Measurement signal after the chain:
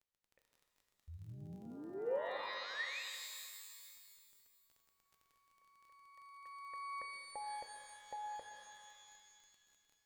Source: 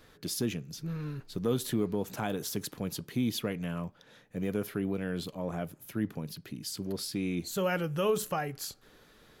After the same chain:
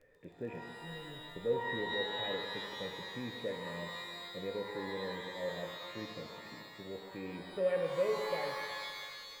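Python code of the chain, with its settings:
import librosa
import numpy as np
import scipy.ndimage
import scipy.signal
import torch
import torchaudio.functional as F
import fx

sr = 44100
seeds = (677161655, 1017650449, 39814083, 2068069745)

y = fx.formant_cascade(x, sr, vowel='e')
y = fx.dmg_crackle(y, sr, seeds[0], per_s=25.0, level_db=-57.0)
y = fx.low_shelf(y, sr, hz=81.0, db=7.0)
y = fx.rev_shimmer(y, sr, seeds[1], rt60_s=2.0, semitones=12, shimmer_db=-2, drr_db=4.5)
y = F.gain(torch.from_numpy(y), 3.0).numpy()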